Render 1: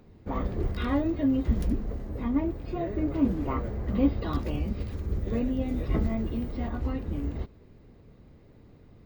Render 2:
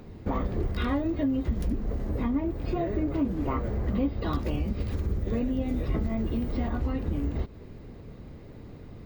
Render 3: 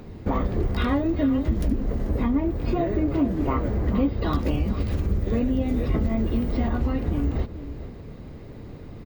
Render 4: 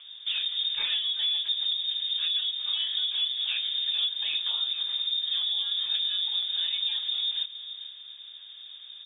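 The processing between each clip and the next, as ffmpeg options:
-af "acompressor=threshold=-35dB:ratio=4,volume=9dB"
-filter_complex "[0:a]asplit=2[a][b];[b]adelay=437.3,volume=-12dB,highshelf=f=4k:g=-9.84[c];[a][c]amix=inputs=2:normalize=0,volume=4.5dB"
-af "asoftclip=type=hard:threshold=-16.5dB,lowpass=f=3.1k:t=q:w=0.5098,lowpass=f=3.1k:t=q:w=0.6013,lowpass=f=3.1k:t=q:w=0.9,lowpass=f=3.1k:t=q:w=2.563,afreqshift=-3700,volume=-6dB"

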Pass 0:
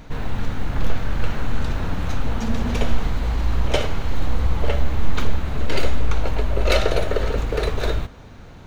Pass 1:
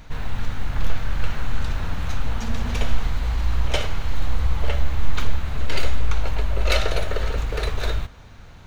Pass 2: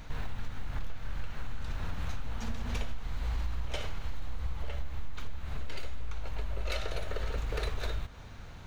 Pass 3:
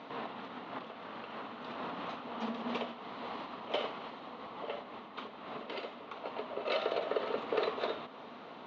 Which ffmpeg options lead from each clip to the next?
-af "equalizer=f=320:w=0.52:g=-8"
-af "acompressor=threshold=-26dB:ratio=6,volume=-2.5dB"
-af "highpass=f=240:w=0.5412,highpass=f=240:w=1.3066,equalizer=f=240:t=q:w=4:g=4,equalizer=f=430:t=q:w=4:g=3,equalizer=f=670:t=q:w=4:g=4,equalizer=f=1.1k:t=q:w=4:g=5,equalizer=f=1.6k:t=q:w=4:g=-8,equalizer=f=2.3k:t=q:w=4:g=-5,lowpass=f=3.5k:w=0.5412,lowpass=f=3.5k:w=1.3066,volume=5dB"

